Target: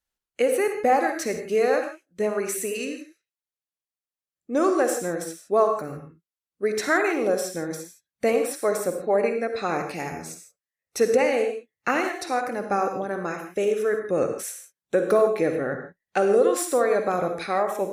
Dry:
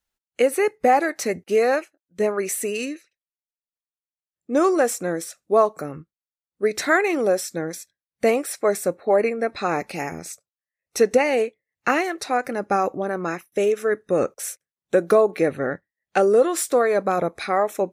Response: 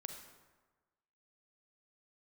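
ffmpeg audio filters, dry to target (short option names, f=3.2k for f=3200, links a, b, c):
-filter_complex "[1:a]atrim=start_sample=2205,atrim=end_sample=6174,asetrate=35721,aresample=44100[a];[0:a][a]afir=irnorm=-1:irlink=0" -ar 48000 -c:a libopus -b:a 128k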